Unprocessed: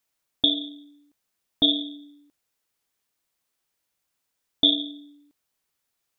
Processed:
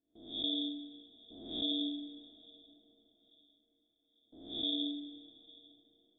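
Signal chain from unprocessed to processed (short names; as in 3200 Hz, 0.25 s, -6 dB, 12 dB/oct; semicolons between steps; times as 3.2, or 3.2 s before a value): spectral swells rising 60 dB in 0.59 s; low-pass opened by the level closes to 820 Hz, open at -19 dBFS; gate with hold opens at -48 dBFS; fifteen-band EQ 160 Hz -5 dB, 400 Hz +6 dB, 1000 Hz -8 dB, 2500 Hz +7 dB; reverse; compressor 6:1, threshold -31 dBFS, peak gain reduction 19.5 dB; reverse; air absorption 160 m; thinning echo 0.845 s, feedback 43%, high-pass 490 Hz, level -24 dB; on a send at -11 dB: reverb RT60 4.7 s, pre-delay 10 ms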